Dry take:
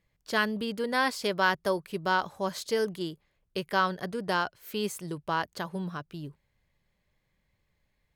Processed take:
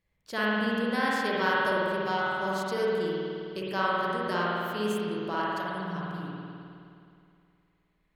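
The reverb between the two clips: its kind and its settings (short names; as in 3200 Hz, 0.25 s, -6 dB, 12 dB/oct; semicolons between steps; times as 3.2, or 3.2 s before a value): spring tank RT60 2.5 s, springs 52 ms, chirp 65 ms, DRR -6.5 dB; gain -6 dB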